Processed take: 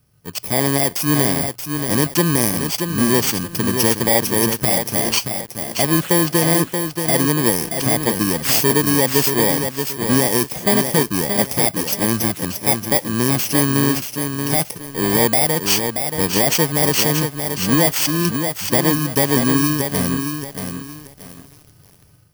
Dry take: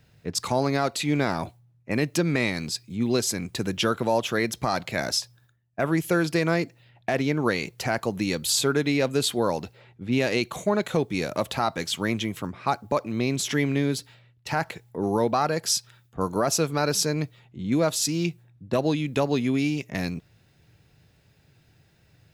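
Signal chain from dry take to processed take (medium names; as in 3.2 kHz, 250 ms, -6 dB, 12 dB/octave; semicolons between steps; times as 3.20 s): bit-reversed sample order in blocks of 32 samples; level rider gain up to 11.5 dB; bit-crushed delay 629 ms, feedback 35%, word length 6-bit, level -6 dB; trim -2 dB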